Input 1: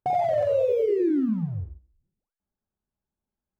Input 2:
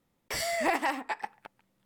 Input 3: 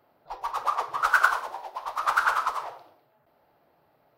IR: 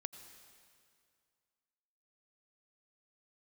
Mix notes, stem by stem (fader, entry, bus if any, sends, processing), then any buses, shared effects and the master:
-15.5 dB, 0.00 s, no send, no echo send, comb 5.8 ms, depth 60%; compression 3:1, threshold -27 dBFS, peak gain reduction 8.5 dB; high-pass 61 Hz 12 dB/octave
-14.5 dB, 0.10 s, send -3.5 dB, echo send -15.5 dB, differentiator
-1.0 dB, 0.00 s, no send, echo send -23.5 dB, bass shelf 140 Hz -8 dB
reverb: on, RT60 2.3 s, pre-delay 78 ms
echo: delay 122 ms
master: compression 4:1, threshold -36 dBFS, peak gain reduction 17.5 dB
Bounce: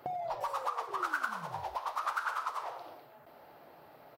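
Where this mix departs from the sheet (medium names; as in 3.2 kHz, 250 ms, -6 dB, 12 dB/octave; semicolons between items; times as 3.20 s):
stem 1 -15.5 dB -> -4.5 dB; stem 3 -1.0 dB -> +10.0 dB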